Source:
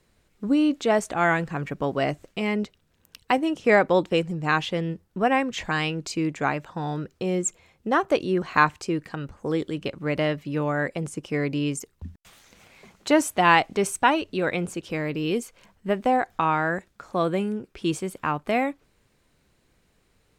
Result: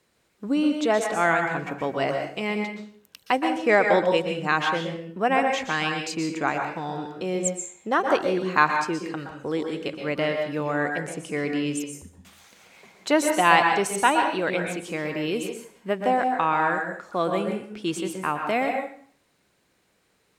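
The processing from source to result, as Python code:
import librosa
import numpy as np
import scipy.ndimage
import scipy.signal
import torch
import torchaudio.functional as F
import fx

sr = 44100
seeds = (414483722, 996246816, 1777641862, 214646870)

y = fx.highpass(x, sr, hz=280.0, slope=6)
y = fx.rev_plate(y, sr, seeds[0], rt60_s=0.52, hf_ratio=0.85, predelay_ms=110, drr_db=3.5)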